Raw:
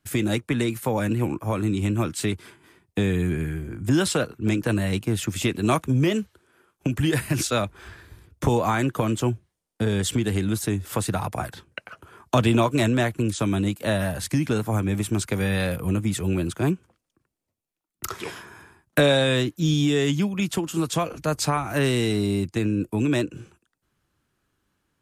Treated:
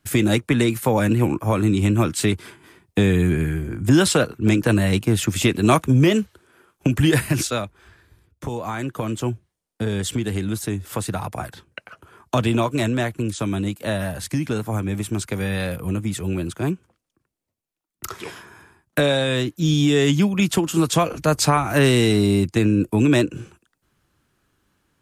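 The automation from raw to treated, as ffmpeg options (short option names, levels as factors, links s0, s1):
-af "volume=8.91,afade=t=out:st=7.17:d=0.58:silence=0.223872,afade=t=in:st=8.53:d=0.78:silence=0.446684,afade=t=in:st=19.28:d=1.05:silence=0.473151"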